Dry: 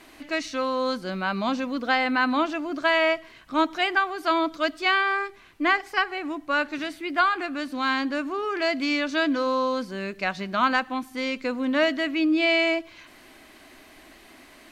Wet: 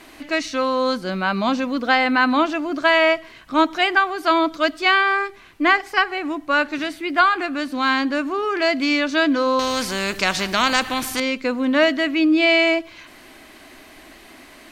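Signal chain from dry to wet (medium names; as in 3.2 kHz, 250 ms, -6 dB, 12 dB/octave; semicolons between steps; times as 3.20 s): 9.59–11.20 s: spectrum-flattening compressor 2:1; trim +5.5 dB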